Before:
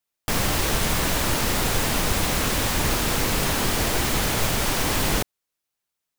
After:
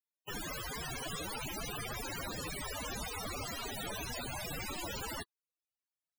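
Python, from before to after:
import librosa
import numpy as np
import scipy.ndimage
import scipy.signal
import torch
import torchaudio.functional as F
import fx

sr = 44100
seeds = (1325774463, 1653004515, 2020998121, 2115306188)

y = (np.mod(10.0 ** (20.0 / 20.0) * x + 1.0, 2.0) - 1.0) / 10.0 ** (20.0 / 20.0)
y = fx.spec_topn(y, sr, count=32)
y = y * 10.0 ** (-5.5 / 20.0)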